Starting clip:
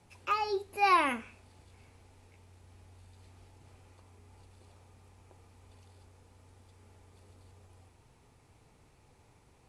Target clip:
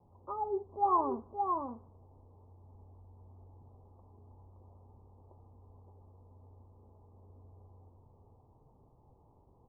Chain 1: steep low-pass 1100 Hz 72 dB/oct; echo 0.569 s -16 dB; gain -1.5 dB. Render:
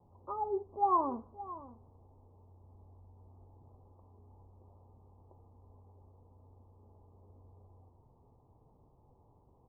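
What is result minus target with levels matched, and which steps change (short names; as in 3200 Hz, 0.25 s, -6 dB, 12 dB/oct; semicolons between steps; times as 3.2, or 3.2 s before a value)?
echo-to-direct -11.5 dB
change: echo 0.569 s -4.5 dB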